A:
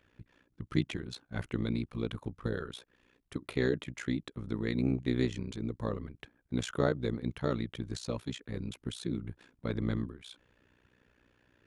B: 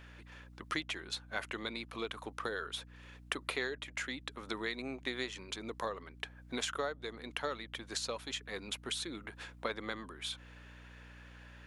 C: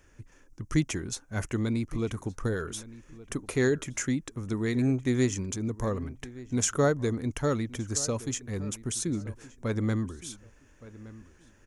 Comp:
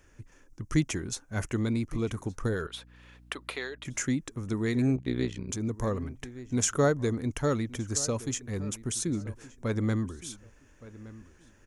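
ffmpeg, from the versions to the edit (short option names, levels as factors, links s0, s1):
-filter_complex "[2:a]asplit=3[s0][s1][s2];[s0]atrim=end=2.672[s3];[1:a]atrim=start=2.668:end=3.852[s4];[s1]atrim=start=3.848:end=4.962[s5];[0:a]atrim=start=4.958:end=5.492[s6];[s2]atrim=start=5.488[s7];[s3][s4]acrossfade=d=0.004:c1=hsin:c2=hsin[s8];[s8][s5]acrossfade=d=0.004:c1=hsin:c2=hsin[s9];[s9][s6]acrossfade=d=0.004:c1=hsin:c2=hsin[s10];[s10][s7]acrossfade=d=0.004:c1=hsin:c2=hsin"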